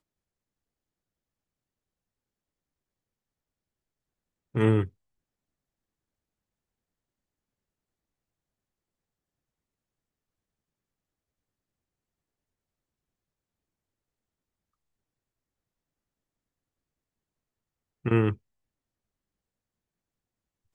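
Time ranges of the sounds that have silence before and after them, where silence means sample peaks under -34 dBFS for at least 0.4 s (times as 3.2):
4.55–4.85
18.06–18.33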